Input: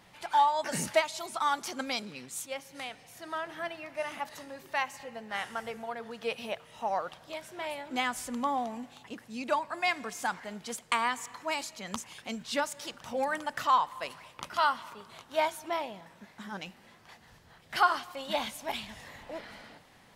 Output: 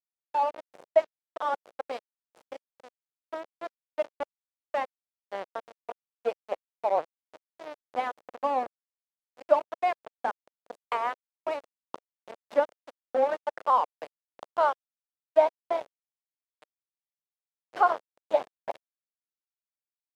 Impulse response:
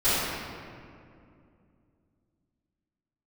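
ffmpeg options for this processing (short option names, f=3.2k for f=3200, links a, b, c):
-filter_complex "[0:a]dynaudnorm=f=290:g=9:m=6dB,aeval=exprs='val(0)*gte(abs(val(0)),0.0708)':c=same,asettb=1/sr,asplit=3[a][b][c];[a]atrim=end=3.834[d];[b]atrim=start=3.83:end=4.8,asetpts=PTS-STARTPTS,afade=t=in:d=0.004:c=qsin,afade=t=out:st=0.966:d=0.004:c=qsin,aeval=exprs='0.299*(cos(1*acos(clip(val(0)/0.299,-1,1)))-cos(1*PI/2))+0.0266*(cos(8*acos(clip(val(0)/0.299,-1,1)))-cos(8*PI/2))':c=same[e];[c]atrim=start=4.796[f];[d][e]acrossfade=d=0.004:c1=hsin:c2=qsin[g];[g][f]acrossfade=d=0.004:c1=qsin:c2=hsin,bandpass=f=570:t=q:w=2.3:csg=0,volume=5dB" -ar 48000 -c:a aac -b:a 192k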